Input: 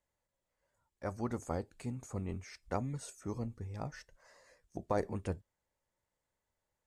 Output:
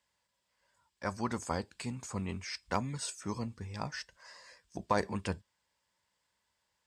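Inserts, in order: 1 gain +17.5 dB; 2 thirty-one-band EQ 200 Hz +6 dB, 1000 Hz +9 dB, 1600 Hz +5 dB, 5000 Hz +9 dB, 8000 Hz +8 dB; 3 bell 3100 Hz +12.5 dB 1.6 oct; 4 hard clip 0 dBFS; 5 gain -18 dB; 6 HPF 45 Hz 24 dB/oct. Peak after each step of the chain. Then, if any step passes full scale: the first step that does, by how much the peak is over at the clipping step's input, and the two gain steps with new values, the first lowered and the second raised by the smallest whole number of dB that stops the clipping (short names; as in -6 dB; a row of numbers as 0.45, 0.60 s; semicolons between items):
-3.0, -0.5, +3.5, 0.0, -18.0, -16.0 dBFS; step 3, 3.5 dB; step 1 +13.5 dB, step 5 -14 dB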